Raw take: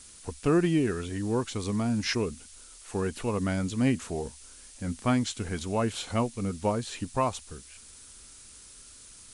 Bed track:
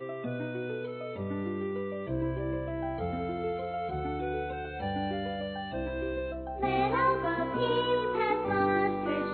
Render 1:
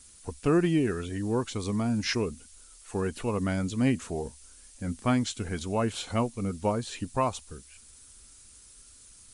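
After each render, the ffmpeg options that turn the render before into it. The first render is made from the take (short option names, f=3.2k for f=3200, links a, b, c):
-af "afftdn=nr=6:nf=-51"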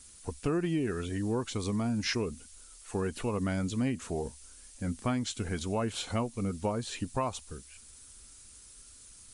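-af "acompressor=threshold=-28dB:ratio=3"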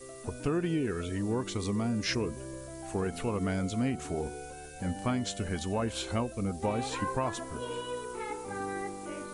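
-filter_complex "[1:a]volume=-9.5dB[a];[0:a][a]amix=inputs=2:normalize=0"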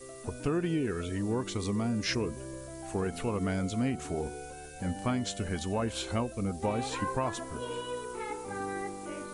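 -af anull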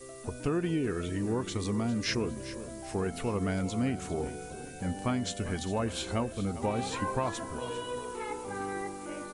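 -af "aecho=1:1:401|802|1203|1604:0.2|0.0918|0.0422|0.0194"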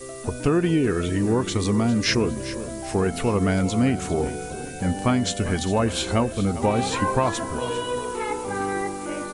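-af "volume=9.5dB"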